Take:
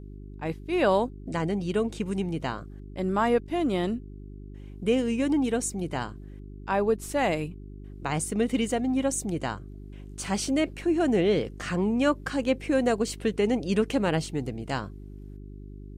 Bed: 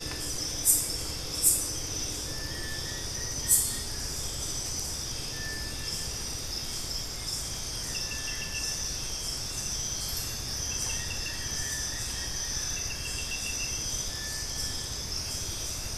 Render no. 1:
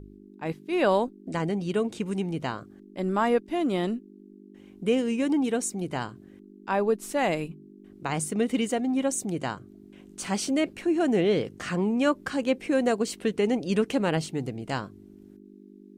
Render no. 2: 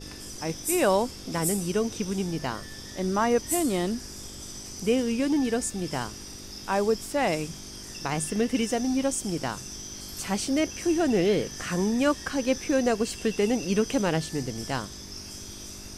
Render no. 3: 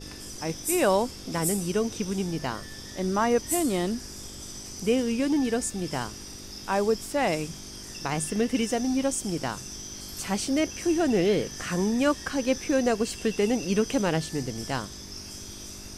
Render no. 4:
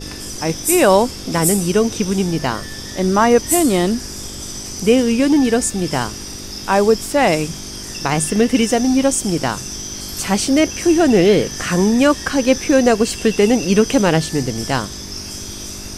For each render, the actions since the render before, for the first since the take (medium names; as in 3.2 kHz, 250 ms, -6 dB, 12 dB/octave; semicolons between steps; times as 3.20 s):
de-hum 50 Hz, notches 3
add bed -7 dB
no audible change
trim +11 dB; peak limiter -1 dBFS, peak gain reduction 2 dB